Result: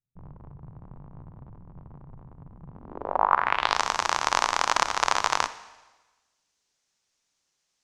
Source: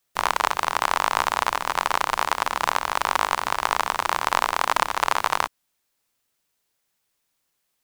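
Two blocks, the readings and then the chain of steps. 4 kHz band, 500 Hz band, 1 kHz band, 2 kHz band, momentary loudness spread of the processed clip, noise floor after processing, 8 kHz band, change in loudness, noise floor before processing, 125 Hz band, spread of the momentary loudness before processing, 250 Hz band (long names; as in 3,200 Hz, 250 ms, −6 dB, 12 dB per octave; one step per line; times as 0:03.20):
−3.0 dB, −4.0 dB, −4.5 dB, −5.0 dB, 8 LU, −78 dBFS, −2.0 dB, −1.5 dB, −75 dBFS, +1.0 dB, 2 LU, −3.5 dB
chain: low-pass filter sweep 140 Hz → 6,200 Hz, 0:02.70–0:03.80
four-comb reverb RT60 1.2 s, DRR 14 dB
level −2.5 dB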